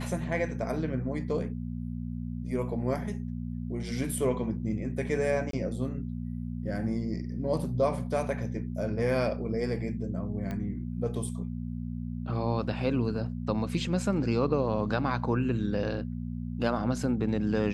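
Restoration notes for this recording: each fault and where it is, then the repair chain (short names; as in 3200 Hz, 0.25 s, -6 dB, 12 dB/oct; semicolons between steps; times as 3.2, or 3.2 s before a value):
hum 60 Hz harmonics 4 -35 dBFS
5.51–5.53 gap 23 ms
10.51 pop -23 dBFS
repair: de-click; de-hum 60 Hz, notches 4; interpolate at 5.51, 23 ms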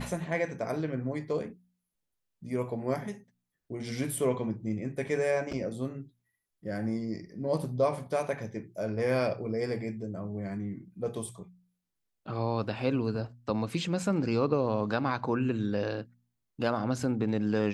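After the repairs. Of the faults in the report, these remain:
10.51 pop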